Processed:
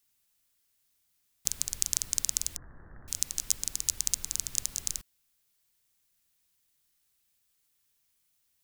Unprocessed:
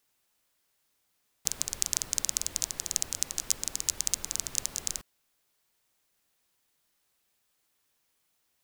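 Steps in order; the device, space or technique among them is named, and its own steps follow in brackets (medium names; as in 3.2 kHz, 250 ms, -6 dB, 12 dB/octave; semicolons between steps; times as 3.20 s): smiley-face EQ (bass shelf 130 Hz +4.5 dB; peaking EQ 620 Hz -8.5 dB 2.8 oct; treble shelf 7.7 kHz +4.5 dB); 2.56–3.08 s: steep low-pass 1.8 kHz 96 dB/octave; trim -1.5 dB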